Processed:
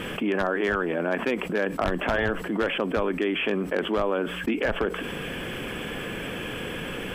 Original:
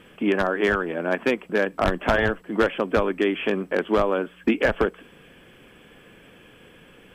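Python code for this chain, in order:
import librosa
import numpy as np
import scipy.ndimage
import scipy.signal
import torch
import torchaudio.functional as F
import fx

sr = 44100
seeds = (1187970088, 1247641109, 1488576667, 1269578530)

y = fx.env_flatten(x, sr, amount_pct=70)
y = y * 10.0 ** (-7.0 / 20.0)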